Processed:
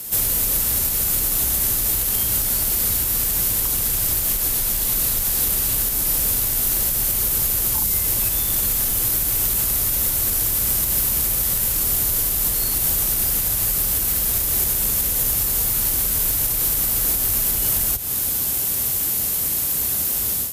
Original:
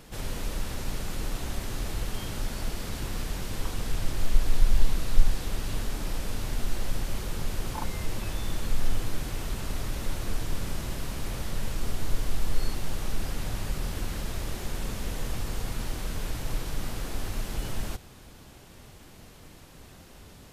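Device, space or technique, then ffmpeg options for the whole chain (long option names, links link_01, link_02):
FM broadcast chain: -filter_complex "[0:a]highpass=42,dynaudnorm=framelen=130:gausssize=3:maxgain=11.5dB,acrossover=split=89|370|3100[link_01][link_02][link_03][link_04];[link_01]acompressor=threshold=-30dB:ratio=4[link_05];[link_02]acompressor=threshold=-39dB:ratio=4[link_06];[link_03]acompressor=threshold=-39dB:ratio=4[link_07];[link_04]acompressor=threshold=-44dB:ratio=4[link_08];[link_05][link_06][link_07][link_08]amix=inputs=4:normalize=0,aemphasis=mode=production:type=50fm,alimiter=limit=-22dB:level=0:latency=1:release=146,asoftclip=type=hard:threshold=-24.5dB,lowpass=frequency=15000:width=0.5412,lowpass=frequency=15000:width=1.3066,aemphasis=mode=production:type=50fm,volume=4dB"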